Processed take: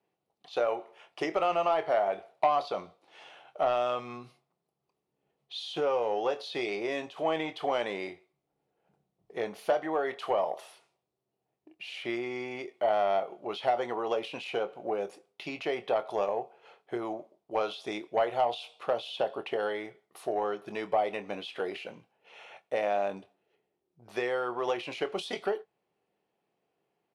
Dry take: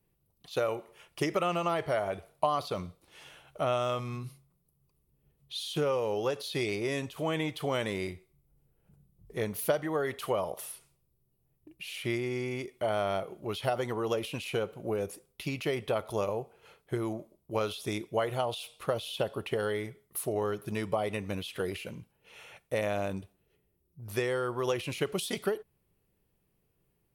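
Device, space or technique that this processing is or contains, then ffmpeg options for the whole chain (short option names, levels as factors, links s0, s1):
intercom: -filter_complex "[0:a]highpass=310,lowpass=4500,equalizer=f=750:t=o:w=0.49:g=9,asoftclip=type=tanh:threshold=0.15,asplit=2[s0][s1];[s1]adelay=25,volume=0.282[s2];[s0][s2]amix=inputs=2:normalize=0"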